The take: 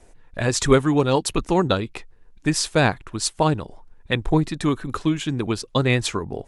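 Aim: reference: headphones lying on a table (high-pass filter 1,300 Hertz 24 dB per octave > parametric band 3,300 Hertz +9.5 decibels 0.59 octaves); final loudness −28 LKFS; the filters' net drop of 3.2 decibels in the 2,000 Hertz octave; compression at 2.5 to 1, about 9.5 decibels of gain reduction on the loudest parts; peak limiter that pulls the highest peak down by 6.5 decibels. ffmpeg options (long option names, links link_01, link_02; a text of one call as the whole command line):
ffmpeg -i in.wav -af "equalizer=frequency=2000:width_type=o:gain=-6,acompressor=threshold=-24dB:ratio=2.5,alimiter=limit=-17dB:level=0:latency=1,highpass=frequency=1300:width=0.5412,highpass=frequency=1300:width=1.3066,equalizer=frequency=3300:width_type=o:width=0.59:gain=9.5,volume=4.5dB" out.wav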